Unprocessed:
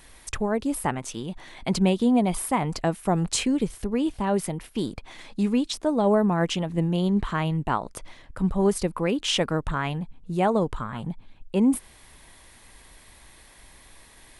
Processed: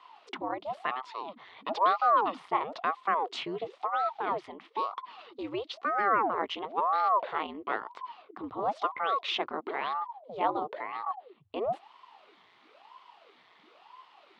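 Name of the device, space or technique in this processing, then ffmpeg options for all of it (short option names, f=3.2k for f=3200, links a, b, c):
voice changer toy: -af "aeval=exprs='val(0)*sin(2*PI*560*n/s+560*0.85/1*sin(2*PI*1*n/s))':c=same,highpass=510,equalizer=f=560:t=q:w=4:g=-7,equalizer=f=1.1k:t=q:w=4:g=4,equalizer=f=1.6k:t=q:w=4:g=-8,equalizer=f=2.5k:t=q:w=4:g=-4,lowpass=f=3.6k:w=0.5412,lowpass=f=3.6k:w=1.3066"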